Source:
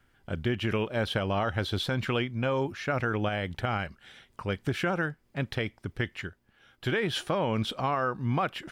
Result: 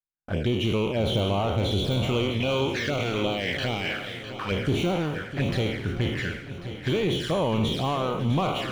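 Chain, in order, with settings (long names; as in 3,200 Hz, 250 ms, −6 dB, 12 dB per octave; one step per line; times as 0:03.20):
peak hold with a decay on every bin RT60 0.79 s
downward expander −43 dBFS
0:02.40–0:04.52: meter weighting curve D
low-pass that shuts in the quiet parts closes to 1,800 Hz, open at −25 dBFS
de-essing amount 95%
leveller curve on the samples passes 2
flanger swept by the level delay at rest 6.2 ms, full sweep at −19.5 dBFS
feedback echo with a long and a short gap by turns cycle 1,092 ms, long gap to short 1.5 to 1, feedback 38%, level −11.5 dB
level −2 dB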